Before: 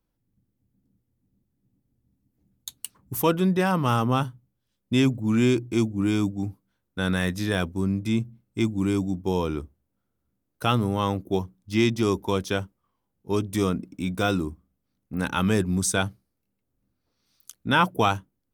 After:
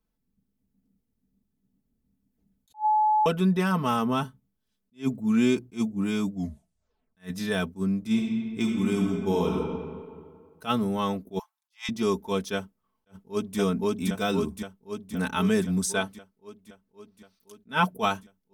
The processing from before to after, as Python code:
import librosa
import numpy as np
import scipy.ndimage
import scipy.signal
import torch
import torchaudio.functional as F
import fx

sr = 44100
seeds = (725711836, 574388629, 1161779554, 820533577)

y = fx.reverb_throw(x, sr, start_s=8.0, length_s=1.56, rt60_s=2.0, drr_db=0.0)
y = fx.steep_highpass(y, sr, hz=730.0, slope=96, at=(11.39, 11.89))
y = fx.echo_throw(y, sr, start_s=12.54, length_s=1.04, ms=520, feedback_pct=70, wet_db=-0.5)
y = fx.bass_treble(y, sr, bass_db=-4, treble_db=-3, at=(15.85, 17.71))
y = fx.edit(y, sr, fx.bleep(start_s=2.74, length_s=0.52, hz=856.0, db=-19.0),
    fx.tape_stop(start_s=6.34, length_s=0.83), tone=tone)
y = y + 0.74 * np.pad(y, (int(4.6 * sr / 1000.0), 0))[:len(y)]
y = fx.attack_slew(y, sr, db_per_s=320.0)
y = y * 10.0 ** (-4.0 / 20.0)